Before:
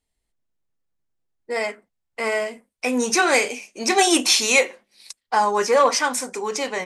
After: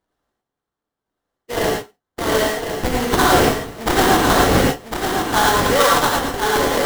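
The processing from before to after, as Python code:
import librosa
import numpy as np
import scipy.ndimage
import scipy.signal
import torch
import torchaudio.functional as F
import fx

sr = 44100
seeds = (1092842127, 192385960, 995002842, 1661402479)

p1 = scipy.signal.sosfilt(scipy.signal.butter(2, 60.0, 'highpass', fs=sr, output='sos'), x)
p2 = fx.low_shelf(p1, sr, hz=390.0, db=-10.5)
p3 = fx.rider(p2, sr, range_db=10, speed_s=0.5)
p4 = p2 + (p3 * 10.0 ** (-3.0 / 20.0))
p5 = fx.sample_hold(p4, sr, seeds[0], rate_hz=2500.0, jitter_pct=20)
p6 = p5 + fx.echo_feedback(p5, sr, ms=1054, feedback_pct=18, wet_db=-6.0, dry=0)
p7 = fx.rev_gated(p6, sr, seeds[1], gate_ms=130, shape='rising', drr_db=-1.5)
y = p7 * 10.0 ** (-2.5 / 20.0)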